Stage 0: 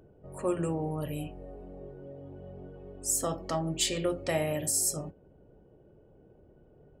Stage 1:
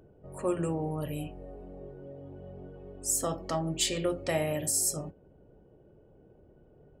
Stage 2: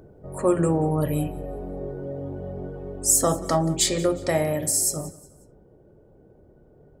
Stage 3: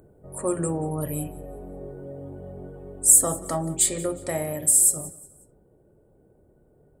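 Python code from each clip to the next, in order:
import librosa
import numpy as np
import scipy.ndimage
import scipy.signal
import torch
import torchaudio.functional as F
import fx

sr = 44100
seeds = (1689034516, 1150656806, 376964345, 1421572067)

y1 = x
y2 = fx.peak_eq(y1, sr, hz=2800.0, db=-13.0, octaves=0.32)
y2 = fx.rider(y2, sr, range_db=10, speed_s=2.0)
y2 = fx.echo_feedback(y2, sr, ms=181, feedback_pct=36, wet_db=-20.0)
y2 = y2 * librosa.db_to_amplitude(8.0)
y3 = fx.high_shelf_res(y2, sr, hz=7000.0, db=7.5, q=3.0)
y3 = y3 * librosa.db_to_amplitude(-5.5)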